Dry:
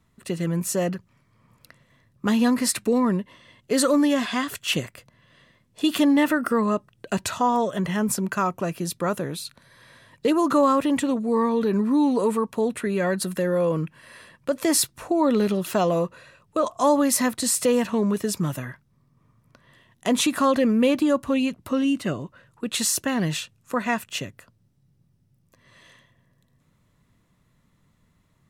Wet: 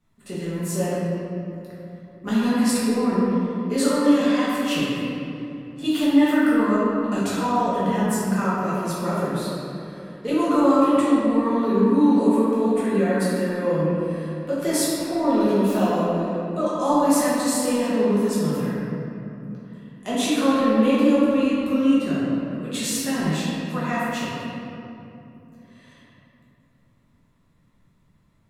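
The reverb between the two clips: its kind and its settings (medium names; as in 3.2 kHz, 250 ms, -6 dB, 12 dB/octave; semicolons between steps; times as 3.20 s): simulated room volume 120 m³, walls hard, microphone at 1.3 m; trim -10 dB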